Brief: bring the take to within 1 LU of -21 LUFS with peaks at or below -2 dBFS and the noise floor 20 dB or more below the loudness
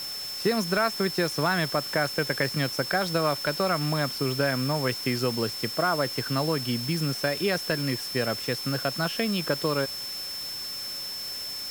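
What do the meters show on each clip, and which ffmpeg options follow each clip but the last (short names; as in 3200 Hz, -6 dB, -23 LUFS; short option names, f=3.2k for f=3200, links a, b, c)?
steady tone 5300 Hz; tone level -33 dBFS; noise floor -35 dBFS; noise floor target -47 dBFS; loudness -27.0 LUFS; peak -11.5 dBFS; loudness target -21.0 LUFS
-> -af "bandreject=f=5.3k:w=30"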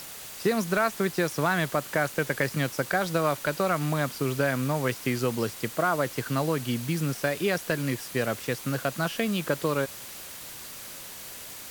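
steady tone none; noise floor -42 dBFS; noise floor target -48 dBFS
-> -af "afftdn=nr=6:nf=-42"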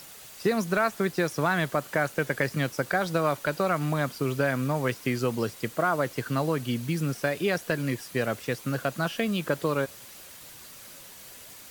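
noise floor -47 dBFS; noise floor target -48 dBFS
-> -af "afftdn=nr=6:nf=-47"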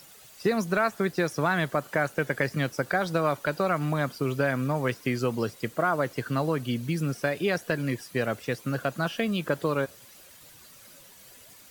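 noise floor -52 dBFS; loudness -28.0 LUFS; peak -12.5 dBFS; loudness target -21.0 LUFS
-> -af "volume=7dB"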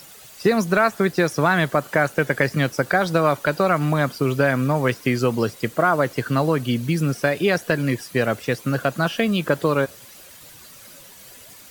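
loudness -21.0 LUFS; peak -5.5 dBFS; noise floor -45 dBFS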